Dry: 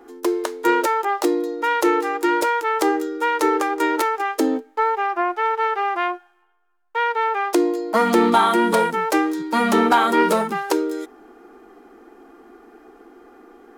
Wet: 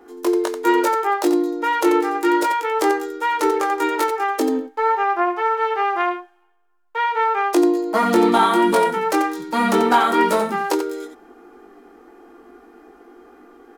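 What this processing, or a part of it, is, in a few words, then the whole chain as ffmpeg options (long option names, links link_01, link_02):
slapback doubling: -filter_complex "[0:a]asplit=3[link_01][link_02][link_03];[link_02]adelay=20,volume=-4.5dB[link_04];[link_03]adelay=88,volume=-8.5dB[link_05];[link_01][link_04][link_05]amix=inputs=3:normalize=0,volume=-1.5dB"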